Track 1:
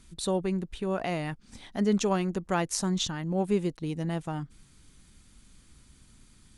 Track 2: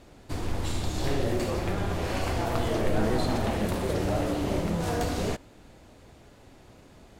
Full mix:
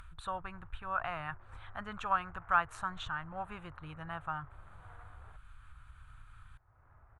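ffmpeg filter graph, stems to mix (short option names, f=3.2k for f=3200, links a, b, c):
-filter_complex "[0:a]equalizer=f=400:t=o:w=0.33:g=-10,equalizer=f=2k:t=o:w=0.33:g=-11,equalizer=f=4k:t=o:w=0.33:g=4,volume=0dB[a];[1:a]lowpass=1k,aeval=exprs='(tanh(25.1*val(0)+0.5)-tanh(0.5))/25.1':c=same,volume=-19.5dB[b];[a][b]amix=inputs=2:normalize=0,firequalizer=gain_entry='entry(110,0);entry(190,-23);entry(500,-15);entry(770,-4);entry(1300,10);entry(5000,-30);entry(7800,-21)':delay=0.05:min_phase=1,acompressor=mode=upward:threshold=-45dB:ratio=2.5"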